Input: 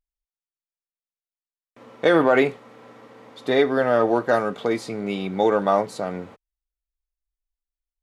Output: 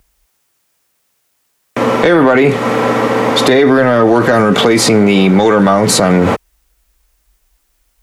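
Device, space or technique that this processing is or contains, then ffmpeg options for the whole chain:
mastering chain: -filter_complex "[0:a]highpass=40,equalizer=f=3.9k:t=o:w=0.77:g=-3,acrossover=split=340|1300[a][b][c];[a]acompressor=threshold=-29dB:ratio=4[d];[b]acompressor=threshold=-33dB:ratio=4[e];[c]acompressor=threshold=-35dB:ratio=4[f];[d][e][f]amix=inputs=3:normalize=0,acompressor=threshold=-31dB:ratio=2.5,asoftclip=type=tanh:threshold=-23.5dB,alimiter=level_in=35dB:limit=-1dB:release=50:level=0:latency=1,volume=-1dB"

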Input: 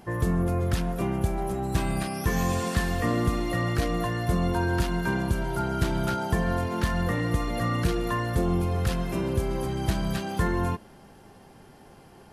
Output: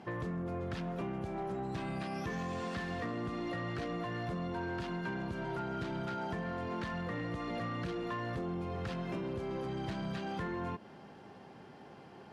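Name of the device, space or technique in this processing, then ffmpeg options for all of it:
AM radio: -af "highpass=130,lowpass=4.1k,acompressor=threshold=-32dB:ratio=6,asoftclip=type=tanh:threshold=-29.5dB,volume=-1dB"

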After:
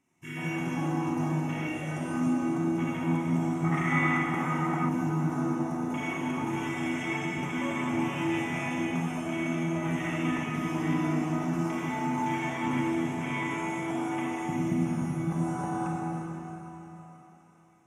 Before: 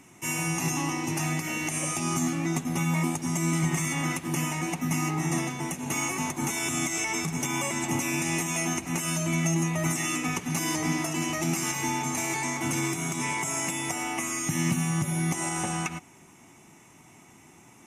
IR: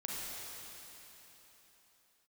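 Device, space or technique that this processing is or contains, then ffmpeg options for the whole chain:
swimming-pool hall: -filter_complex "[0:a]afwtdn=0.0282[a];[1:a]atrim=start_sample=2205[b];[a][b]afir=irnorm=-1:irlink=0,highshelf=f=4.8k:g=-5,asettb=1/sr,asplit=3[c][d][e];[c]atrim=end=3.644[f];[d]atrim=start=3.64:end=4.89,asetpts=PTS-STARTPTS,afade=t=in:d=0.004:c=qsin,afade=t=out:st=1.246:d=0.004:c=qsin,equalizer=f=800:t=o:w=0.33:g=6,equalizer=f=1.25k:t=o:w=0.33:g=12,equalizer=f=2k:t=o:w=0.33:g=9[g];[e]atrim=start=4.886[h];[f][g]acrossfade=d=0.004:c1=hsin:c2=qsin[i];[i][h]acrossfade=d=0.004:c1=qsin:c2=hsin,volume=-1.5dB"

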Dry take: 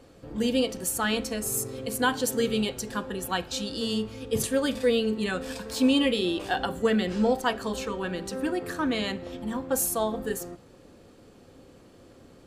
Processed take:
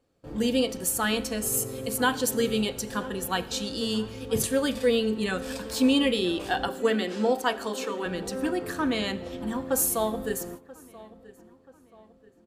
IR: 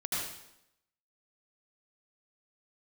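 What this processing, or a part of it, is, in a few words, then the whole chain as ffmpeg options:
compressed reverb return: -filter_complex "[0:a]asettb=1/sr,asplit=3[a][b][c];[a]atrim=end=6.684[d];[b]atrim=start=6.68:end=8.06,asetpts=PTS-STARTPTS,afade=t=in:d=0.004:c=qsin,afade=t=out:st=1.376:d=0.004:c=qsin,highpass=f=230:w=0.5412,highpass=f=230:w=1.3066[e];[c]atrim=start=8.056[f];[d][e]acrossfade=d=0.004:c1=hsin:c2=qsin[g];[g][f]acrossfade=d=0.004:c1=qsin:c2=hsin,asplit=2[h][i];[1:a]atrim=start_sample=2205[j];[i][j]afir=irnorm=-1:irlink=0,acompressor=threshold=-39dB:ratio=4,volume=-9.5dB[k];[h][k]amix=inputs=2:normalize=0,agate=range=-21dB:threshold=-41dB:ratio=16:detection=peak,highshelf=f=12k:g=5,asplit=2[l][m];[m]adelay=982,lowpass=f=2.8k:p=1,volume=-19.5dB,asplit=2[n][o];[o]adelay=982,lowpass=f=2.8k:p=1,volume=0.46,asplit=2[p][q];[q]adelay=982,lowpass=f=2.8k:p=1,volume=0.46,asplit=2[r][s];[s]adelay=982,lowpass=f=2.8k:p=1,volume=0.46[t];[l][n][p][r][t]amix=inputs=5:normalize=0"

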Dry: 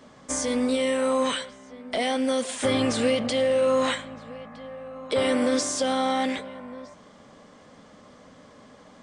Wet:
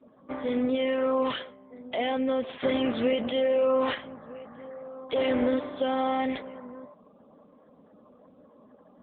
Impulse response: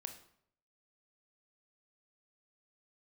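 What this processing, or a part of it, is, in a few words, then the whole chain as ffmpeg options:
mobile call with aggressive noise cancelling: -af "highpass=170,afftdn=nr=29:nf=-48,volume=-1.5dB" -ar 8000 -c:a libopencore_amrnb -b:a 7950

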